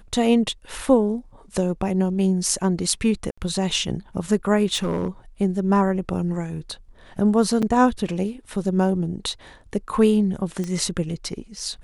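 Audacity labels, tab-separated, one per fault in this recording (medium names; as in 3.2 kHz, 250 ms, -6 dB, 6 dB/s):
3.310000	3.380000	dropout 65 ms
4.740000	5.080000	clipped -18.5 dBFS
7.620000	7.630000	dropout 6.5 ms
10.640000	10.640000	pop -17 dBFS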